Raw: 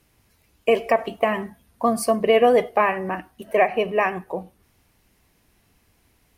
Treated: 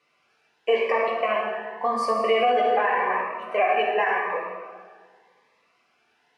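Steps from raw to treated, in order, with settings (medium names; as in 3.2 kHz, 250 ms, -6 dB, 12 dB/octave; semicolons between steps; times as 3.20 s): high-pass 890 Hz 12 dB/octave; tape spacing loss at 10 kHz 30 dB; reverberation RT60 1.7 s, pre-delay 3 ms, DRR -3 dB; loudness maximiser +16 dB; Shepard-style phaser rising 0.88 Hz; trim -9 dB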